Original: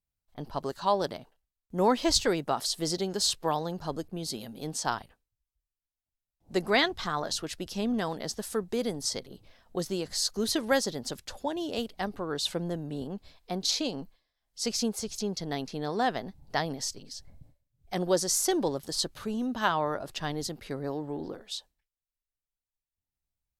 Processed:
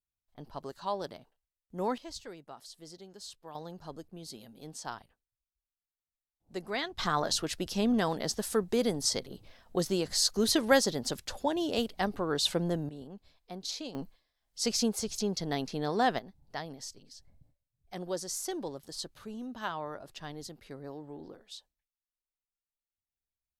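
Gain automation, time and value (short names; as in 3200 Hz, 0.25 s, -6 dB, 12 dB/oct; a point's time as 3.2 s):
-8 dB
from 1.98 s -19 dB
from 3.55 s -10 dB
from 6.98 s +2 dB
from 12.89 s -9.5 dB
from 13.95 s +0.5 dB
from 16.19 s -9.5 dB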